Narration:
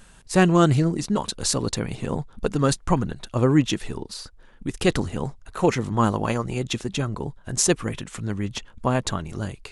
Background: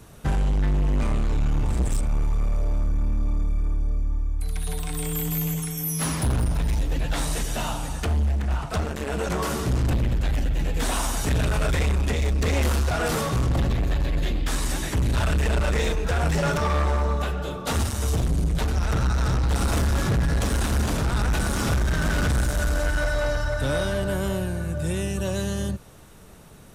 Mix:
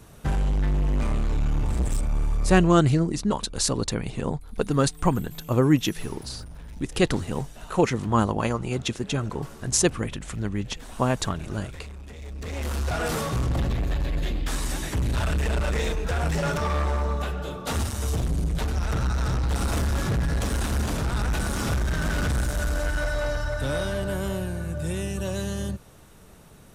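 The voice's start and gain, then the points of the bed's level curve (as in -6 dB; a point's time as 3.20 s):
2.15 s, -1.0 dB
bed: 2.55 s -1.5 dB
2.85 s -18 dB
12.12 s -18 dB
12.92 s -2.5 dB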